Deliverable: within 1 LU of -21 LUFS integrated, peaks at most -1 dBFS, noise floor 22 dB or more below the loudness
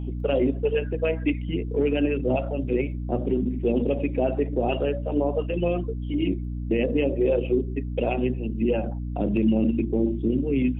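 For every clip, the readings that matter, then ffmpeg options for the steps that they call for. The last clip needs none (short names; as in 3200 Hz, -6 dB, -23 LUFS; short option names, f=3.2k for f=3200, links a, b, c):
hum 60 Hz; harmonics up to 300 Hz; hum level -28 dBFS; loudness -25.0 LUFS; peak -12.0 dBFS; loudness target -21.0 LUFS
-> -af "bandreject=f=60:t=h:w=6,bandreject=f=120:t=h:w=6,bandreject=f=180:t=h:w=6,bandreject=f=240:t=h:w=6,bandreject=f=300:t=h:w=6"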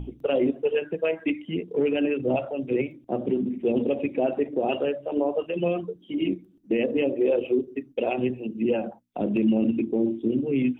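hum none; loudness -26.0 LUFS; peak -13.0 dBFS; loudness target -21.0 LUFS
-> -af "volume=5dB"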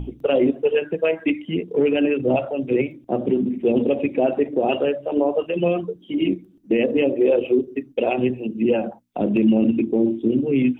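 loudness -21.0 LUFS; peak -8.0 dBFS; noise floor -50 dBFS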